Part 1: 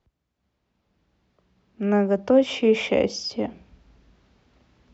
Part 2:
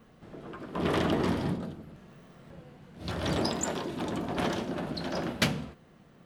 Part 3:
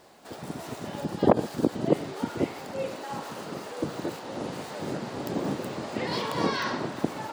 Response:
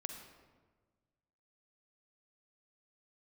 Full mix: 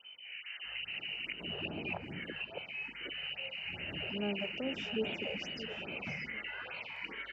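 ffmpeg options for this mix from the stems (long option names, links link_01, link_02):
-filter_complex "[0:a]aecho=1:1:4.8:0.46,adelay=2300,volume=-19.5dB,asplit=2[link_01][link_02];[link_02]volume=-11dB[link_03];[1:a]lowpass=1100,volume=-4dB,asplit=2[link_04][link_05];[link_05]volume=-10.5dB[link_06];[2:a]acrossover=split=480 3500:gain=0.224 1 0.0794[link_07][link_08][link_09];[link_07][link_08][link_09]amix=inputs=3:normalize=0,aeval=exprs='val(0)+0.00447*(sin(2*PI*50*n/s)+sin(2*PI*2*50*n/s)/2+sin(2*PI*3*50*n/s)/3+sin(2*PI*4*50*n/s)/4+sin(2*PI*5*50*n/s)/5)':channel_layout=same,asplit=2[link_10][link_11];[link_11]afreqshift=1.2[link_12];[link_10][link_12]amix=inputs=2:normalize=1,volume=-1dB,asplit=2[link_13][link_14];[link_14]volume=-13.5dB[link_15];[link_04][link_13]amix=inputs=2:normalize=0,lowpass=frequency=2600:width_type=q:width=0.5098,lowpass=frequency=2600:width_type=q:width=0.6013,lowpass=frequency=2600:width_type=q:width=0.9,lowpass=frequency=2600:width_type=q:width=2.563,afreqshift=-3100,acompressor=threshold=-38dB:ratio=6,volume=0dB[link_16];[link_03][link_06][link_15]amix=inputs=3:normalize=0,aecho=0:1:649:1[link_17];[link_01][link_16][link_17]amix=inputs=3:normalize=0,highpass=54,equalizer=frequency=1100:width=4.3:gain=-10,afftfilt=real='re*(1-between(b*sr/1024,240*pow(6700/240,0.5+0.5*sin(2*PI*2.4*pts/sr))/1.41,240*pow(6700/240,0.5+0.5*sin(2*PI*2.4*pts/sr))*1.41))':imag='im*(1-between(b*sr/1024,240*pow(6700/240,0.5+0.5*sin(2*PI*2.4*pts/sr))/1.41,240*pow(6700/240,0.5+0.5*sin(2*PI*2.4*pts/sr))*1.41))':win_size=1024:overlap=0.75"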